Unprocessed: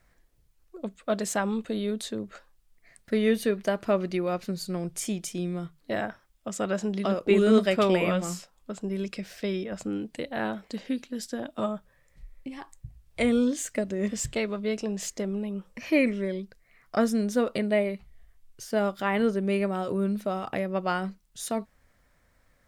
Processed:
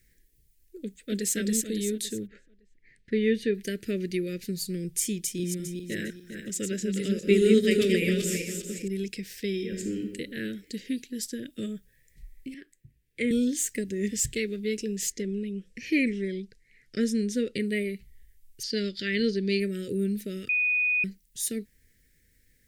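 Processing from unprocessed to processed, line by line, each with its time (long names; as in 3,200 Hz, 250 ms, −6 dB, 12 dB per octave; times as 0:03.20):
0:00.81–0:01.35: delay throw 280 ms, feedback 40%, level −0.5 dB
0:02.26–0:03.53: low-pass filter 1,900 Hz → 3,800 Hz
0:05.19–0:08.88: feedback delay that plays each chunk backwards 202 ms, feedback 53%, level −5 dB
0:09.52–0:10.00: thrown reverb, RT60 1.3 s, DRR 3 dB
0:12.54–0:13.31: three-way crossover with the lows and the highs turned down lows −18 dB, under 160 Hz, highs −13 dB, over 2,800 Hz
0:15.12–0:17.60: low-pass filter 7,000 Hz
0:18.63–0:19.60: low-pass with resonance 4,500 Hz, resonance Q 7.1
0:20.49–0:21.04: beep over 2,480 Hz −22 dBFS
whole clip: elliptic band-stop filter 440–1,800 Hz, stop band 70 dB; high-shelf EQ 7,600 Hz +11.5 dB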